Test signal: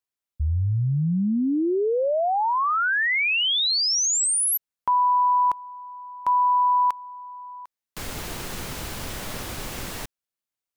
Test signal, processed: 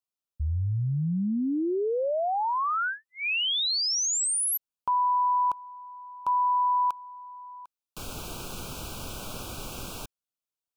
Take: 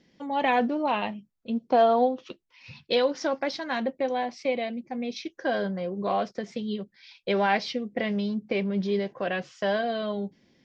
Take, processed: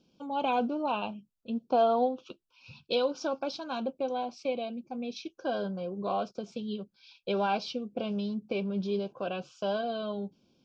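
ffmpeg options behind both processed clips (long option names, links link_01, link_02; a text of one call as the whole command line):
ffmpeg -i in.wav -af "asuperstop=centerf=1900:order=8:qfactor=2.4,volume=-4.5dB" out.wav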